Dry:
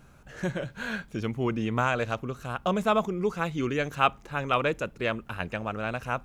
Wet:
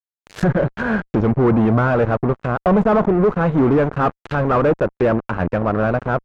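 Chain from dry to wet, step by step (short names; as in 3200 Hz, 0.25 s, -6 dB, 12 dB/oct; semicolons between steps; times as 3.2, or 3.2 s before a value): fuzz box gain 33 dB, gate -39 dBFS; treble ducked by the level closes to 1400 Hz, closed at -19 dBFS; dynamic EQ 3100 Hz, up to -6 dB, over -40 dBFS, Q 0.74; gain +2.5 dB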